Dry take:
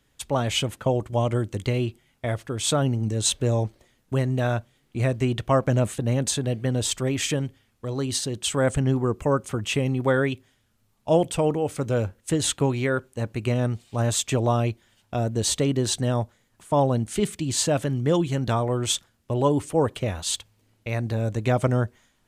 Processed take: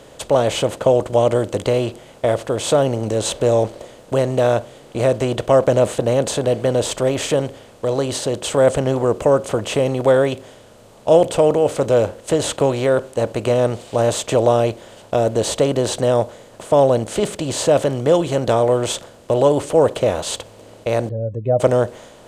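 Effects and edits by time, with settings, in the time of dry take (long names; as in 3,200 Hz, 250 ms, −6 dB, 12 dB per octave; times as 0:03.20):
0:21.09–0:21.60: expanding power law on the bin magnitudes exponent 2.8
whole clip: compressor on every frequency bin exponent 0.6; parametric band 550 Hz +11.5 dB 1.1 octaves; level −3 dB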